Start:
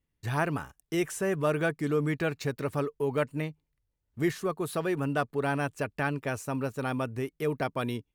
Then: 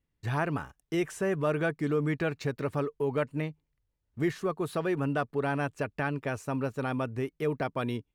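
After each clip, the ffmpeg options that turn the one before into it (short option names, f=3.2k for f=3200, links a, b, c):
-filter_complex "[0:a]lowpass=f=4k:p=1,asplit=2[a][b];[b]alimiter=limit=-22.5dB:level=0:latency=1:release=156,volume=-3dB[c];[a][c]amix=inputs=2:normalize=0,volume=-4dB"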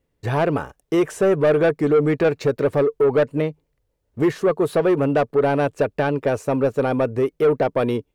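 -af "equalizer=f=500:t=o:w=1.2:g=11.5,asoftclip=type=tanh:threshold=-18dB,volume=7dB"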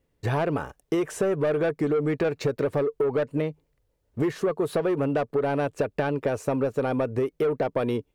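-af "acompressor=threshold=-22dB:ratio=6"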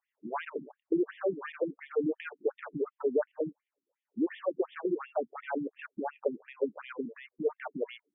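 -af "afftfilt=real='re*between(b*sr/1024,240*pow(2600/240,0.5+0.5*sin(2*PI*2.8*pts/sr))/1.41,240*pow(2600/240,0.5+0.5*sin(2*PI*2.8*pts/sr))*1.41)':imag='im*between(b*sr/1024,240*pow(2600/240,0.5+0.5*sin(2*PI*2.8*pts/sr))/1.41,240*pow(2600/240,0.5+0.5*sin(2*PI*2.8*pts/sr))*1.41)':win_size=1024:overlap=0.75,volume=-1.5dB"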